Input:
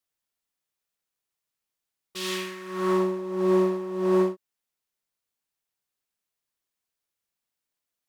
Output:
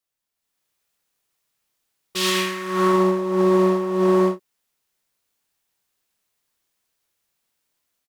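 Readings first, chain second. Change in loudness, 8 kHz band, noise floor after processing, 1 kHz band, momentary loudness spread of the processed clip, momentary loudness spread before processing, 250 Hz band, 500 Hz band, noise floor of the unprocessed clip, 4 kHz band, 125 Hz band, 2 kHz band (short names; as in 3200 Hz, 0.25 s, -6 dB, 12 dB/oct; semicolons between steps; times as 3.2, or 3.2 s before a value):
+6.5 dB, +10.0 dB, -82 dBFS, +9.0 dB, 7 LU, 11 LU, +6.0 dB, +5.5 dB, under -85 dBFS, +10.0 dB, n/a, +9.0 dB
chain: doubler 28 ms -8.5 dB; AGC gain up to 10 dB; limiter -10.5 dBFS, peak gain reduction 6 dB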